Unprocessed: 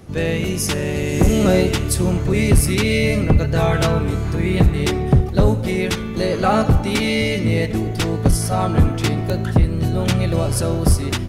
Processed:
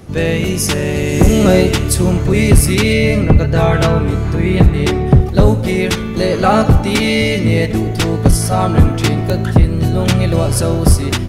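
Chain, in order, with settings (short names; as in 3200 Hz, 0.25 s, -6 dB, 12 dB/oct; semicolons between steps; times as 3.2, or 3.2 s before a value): 2.93–5.21 high shelf 4500 Hz -6 dB; gain +5 dB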